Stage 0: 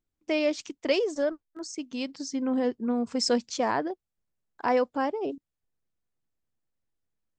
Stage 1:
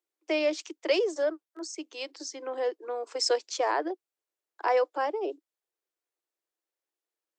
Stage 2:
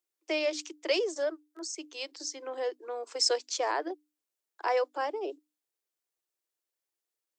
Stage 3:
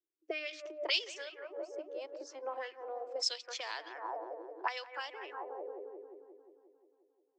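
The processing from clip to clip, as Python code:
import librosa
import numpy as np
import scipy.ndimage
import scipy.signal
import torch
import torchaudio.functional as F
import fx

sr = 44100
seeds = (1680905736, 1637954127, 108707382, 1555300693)

y1 = scipy.signal.sosfilt(scipy.signal.butter(16, 310.0, 'highpass', fs=sr, output='sos'), x)
y2 = fx.high_shelf(y1, sr, hz=3400.0, db=7.5)
y2 = fx.hum_notches(y2, sr, base_hz=50, count=6)
y2 = y2 * librosa.db_to_amplitude(-3.5)
y3 = fx.rotary(y2, sr, hz=0.75)
y3 = fx.echo_wet_lowpass(y3, sr, ms=177, feedback_pct=68, hz=1800.0, wet_db=-10.0)
y3 = fx.auto_wah(y3, sr, base_hz=310.0, top_hz=3600.0, q=2.5, full_db=-28.0, direction='up')
y3 = y3 * librosa.db_to_amplitude(6.5)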